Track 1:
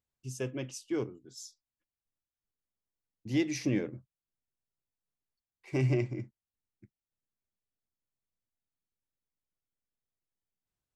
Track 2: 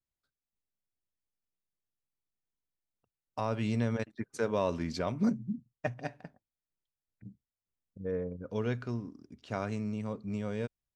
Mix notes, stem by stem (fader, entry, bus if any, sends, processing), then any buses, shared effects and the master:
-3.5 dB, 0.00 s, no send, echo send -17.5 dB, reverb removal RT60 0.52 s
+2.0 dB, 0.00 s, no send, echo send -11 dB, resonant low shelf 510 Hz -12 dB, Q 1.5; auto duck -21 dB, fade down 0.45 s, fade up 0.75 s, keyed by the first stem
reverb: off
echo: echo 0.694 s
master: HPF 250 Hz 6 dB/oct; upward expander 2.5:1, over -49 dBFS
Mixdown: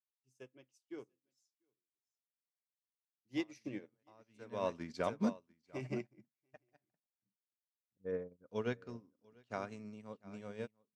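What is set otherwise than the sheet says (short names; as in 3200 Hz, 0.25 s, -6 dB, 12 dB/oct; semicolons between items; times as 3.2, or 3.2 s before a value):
stem 1: missing reverb removal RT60 0.52 s; stem 2: missing resonant low shelf 510 Hz -12 dB, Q 1.5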